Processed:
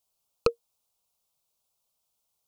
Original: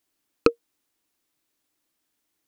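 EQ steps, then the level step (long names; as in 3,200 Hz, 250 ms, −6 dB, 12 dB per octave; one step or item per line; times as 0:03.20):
phaser with its sweep stopped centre 740 Hz, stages 4
0.0 dB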